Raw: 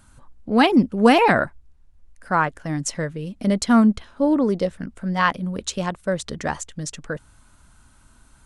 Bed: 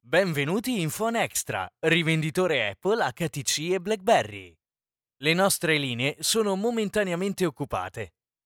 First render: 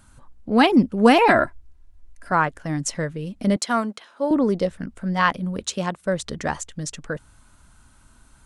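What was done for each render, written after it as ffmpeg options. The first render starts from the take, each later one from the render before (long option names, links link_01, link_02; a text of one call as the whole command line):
ffmpeg -i in.wav -filter_complex "[0:a]asettb=1/sr,asplit=3[link_01][link_02][link_03];[link_01]atrim=end=1.284[link_04];[link_02]atrim=start=1.28:end=2.32,asetpts=PTS-STARTPTS,afade=type=in:duration=0.004:curve=qsin,afade=type=out:start_time=1.036:duration=0.004:curve=qsin,aecho=1:1:3:0.65,atrim=end_sample=45864[link_05];[link_03]atrim=start=2.316[link_06];[link_04][link_05]acrossfade=duration=0.004:curve1=hsin:curve2=qsin[link_07];[link_07][link_06]acrossfade=duration=0.004:curve1=qsin:curve2=hsin,asettb=1/sr,asplit=3[link_08][link_09][link_10];[link_08]atrim=end=3.564[link_11];[link_09]atrim=start=3.56:end=4.31,asetpts=PTS-STARTPTS,afade=type=in:duration=0.004:curve=qsin,afade=type=out:start_time=0.746:duration=0.004:curve=qsin,highpass=460[link_12];[link_10]atrim=start=4.306[link_13];[link_11][link_12]acrossfade=duration=0.004:curve1=hsin:curve2=qsin[link_14];[link_14][link_13]acrossfade=duration=0.004:curve1=qsin:curve2=hsin,asettb=1/sr,asplit=3[link_15][link_16][link_17];[link_15]atrim=end=5.634[link_18];[link_16]atrim=start=5.63:end=6.06,asetpts=PTS-STARTPTS,afade=type=in:duration=0.004:curve=qsin,afade=type=out:start_time=0.426:duration=0.004:curve=qsin,highpass=110[link_19];[link_17]atrim=start=6.056[link_20];[link_18][link_19]acrossfade=duration=0.004:curve1=hsin:curve2=qsin[link_21];[link_21][link_20]acrossfade=duration=0.004:curve1=qsin:curve2=hsin" out.wav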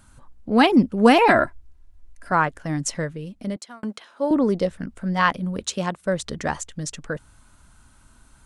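ffmpeg -i in.wav -filter_complex "[0:a]asplit=2[link_01][link_02];[link_01]atrim=end=3.83,asetpts=PTS-STARTPTS,afade=type=out:start_time=2.95:duration=0.88[link_03];[link_02]atrim=start=3.83,asetpts=PTS-STARTPTS,afade=type=in:duration=0.004:curve=hsin[link_04];[link_03][link_04]concat=n=2:v=0:a=1" out.wav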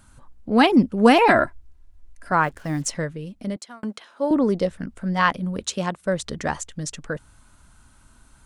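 ffmpeg -i in.wav -filter_complex "[0:a]asplit=3[link_01][link_02][link_03];[link_01]afade=type=out:start_time=2.41:duration=0.02[link_04];[link_02]acrusher=bits=7:mix=0:aa=0.5,afade=type=in:start_time=2.41:duration=0.02,afade=type=out:start_time=2.89:duration=0.02[link_05];[link_03]afade=type=in:start_time=2.89:duration=0.02[link_06];[link_04][link_05][link_06]amix=inputs=3:normalize=0" out.wav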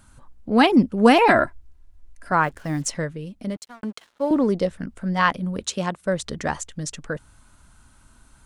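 ffmpeg -i in.wav -filter_complex "[0:a]asplit=3[link_01][link_02][link_03];[link_01]afade=type=out:start_time=3.48:duration=0.02[link_04];[link_02]aeval=exprs='sgn(val(0))*max(abs(val(0))-0.00335,0)':channel_layout=same,afade=type=in:start_time=3.48:duration=0.02,afade=type=out:start_time=4.46:duration=0.02[link_05];[link_03]afade=type=in:start_time=4.46:duration=0.02[link_06];[link_04][link_05][link_06]amix=inputs=3:normalize=0" out.wav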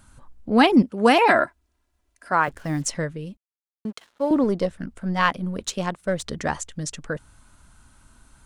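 ffmpeg -i in.wav -filter_complex "[0:a]asettb=1/sr,asplit=3[link_01][link_02][link_03];[link_01]atrim=end=0.824[link_04];[link_02]atrim=start=0.82:end=2.48,asetpts=PTS-STARTPTS,afade=type=in:duration=0.004:curve=qsin,afade=type=out:start_time=1.656:duration=0.004:curve=qsin,highpass=frequency=350:poles=1[link_05];[link_03]atrim=start=2.476[link_06];[link_04][link_05]acrossfade=duration=0.004:curve1=hsin:curve2=qsin[link_07];[link_07][link_06]acrossfade=duration=0.004:curve1=qsin:curve2=hsin,asettb=1/sr,asplit=3[link_08][link_09][link_10];[link_08]atrim=end=4.444[link_11];[link_09]atrim=start=4.44:end=6.25,asetpts=PTS-STARTPTS,afade=type=in:duration=0.004:curve=qsin,afade=type=out:start_time=1.806:duration=0.004:curve=qsin,aeval=exprs='if(lt(val(0),0),0.708*val(0),val(0))':channel_layout=same[link_12];[link_10]atrim=start=6.246[link_13];[link_11][link_12]acrossfade=duration=0.004:curve1=hsin:curve2=qsin[link_14];[link_14][link_13]acrossfade=duration=0.004:curve1=qsin:curve2=hsin,asplit=3[link_15][link_16][link_17];[link_15]atrim=end=3.37,asetpts=PTS-STARTPTS,afade=type=out:start_time=3.366:duration=0.004:curve=hsin[link_18];[link_16]atrim=start=3.37:end=3.85,asetpts=PTS-STARTPTS,volume=0[link_19];[link_17]atrim=start=3.85,asetpts=PTS-STARTPTS,afade=type=in:duration=0.004:curve=hsin[link_20];[link_18][link_19][link_20]concat=n=3:v=0:a=1" out.wav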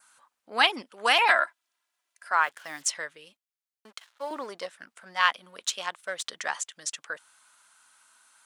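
ffmpeg -i in.wav -af "highpass=1100,adynamicequalizer=threshold=0.00708:dfrequency=3300:dqfactor=3.5:tfrequency=3300:tqfactor=3.5:attack=5:release=100:ratio=0.375:range=2.5:mode=boostabove:tftype=bell" out.wav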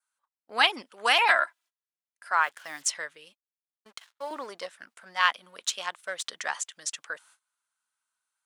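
ffmpeg -i in.wav -af "lowshelf=frequency=400:gain=-5,agate=range=-24dB:threshold=-56dB:ratio=16:detection=peak" out.wav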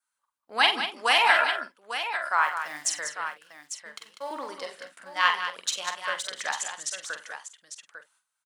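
ffmpeg -i in.wav -filter_complex "[0:a]asplit=2[link_01][link_02];[link_02]adelay=47,volume=-12dB[link_03];[link_01][link_03]amix=inputs=2:normalize=0,aecho=1:1:46|166|195|849:0.447|0.106|0.355|0.335" out.wav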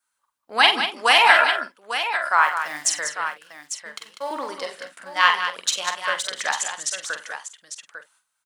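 ffmpeg -i in.wav -af "volume=6dB,alimiter=limit=-1dB:level=0:latency=1" out.wav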